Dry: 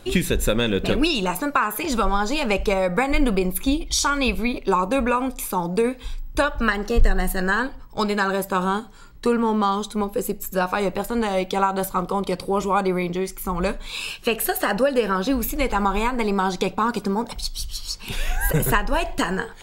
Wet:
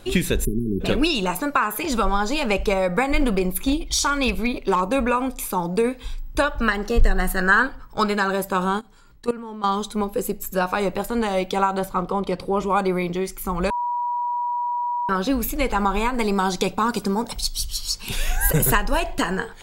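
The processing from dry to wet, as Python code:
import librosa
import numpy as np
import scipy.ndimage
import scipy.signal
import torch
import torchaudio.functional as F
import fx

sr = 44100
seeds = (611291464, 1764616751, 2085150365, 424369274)

y = fx.spec_erase(x, sr, start_s=0.45, length_s=0.36, low_hz=440.0, high_hz=9300.0)
y = fx.clip_hard(y, sr, threshold_db=-13.5, at=(3.19, 4.93))
y = fx.peak_eq(y, sr, hz=1400.0, db=9.5, octaves=0.55, at=(7.19, 8.15))
y = fx.level_steps(y, sr, step_db=17, at=(8.79, 9.64))
y = fx.high_shelf(y, sr, hz=5500.0, db=-11.0, at=(11.79, 12.7))
y = fx.bass_treble(y, sr, bass_db=1, treble_db=6, at=(16.14, 19.0))
y = fx.edit(y, sr, fx.bleep(start_s=13.7, length_s=1.39, hz=966.0, db=-21.5), tone=tone)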